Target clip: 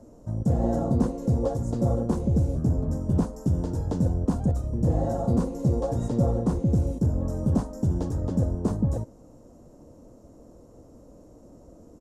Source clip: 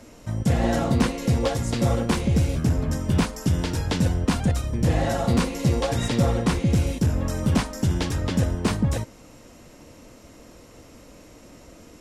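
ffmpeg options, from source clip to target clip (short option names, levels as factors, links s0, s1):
-af "firequalizer=gain_entry='entry(580,0);entry(2200,-27);entry(6700,-10);entry(10000,-13)':delay=0.05:min_phase=1,volume=0.794"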